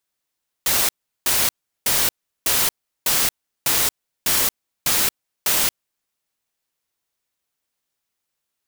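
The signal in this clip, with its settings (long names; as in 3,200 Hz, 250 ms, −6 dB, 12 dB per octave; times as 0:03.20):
noise bursts white, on 0.23 s, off 0.37 s, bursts 9, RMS −18.5 dBFS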